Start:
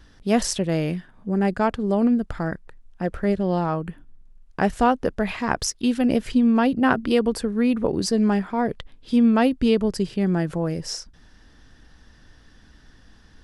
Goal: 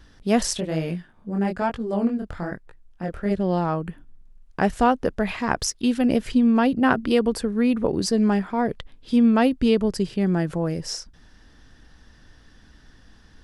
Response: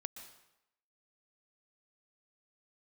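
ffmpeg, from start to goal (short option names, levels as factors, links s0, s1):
-filter_complex "[0:a]asplit=3[s0][s1][s2];[s0]afade=t=out:st=0.57:d=0.02[s3];[s1]flanger=delay=17.5:depth=7.4:speed=1.1,afade=t=in:st=0.57:d=0.02,afade=t=out:st=3.3:d=0.02[s4];[s2]afade=t=in:st=3.3:d=0.02[s5];[s3][s4][s5]amix=inputs=3:normalize=0"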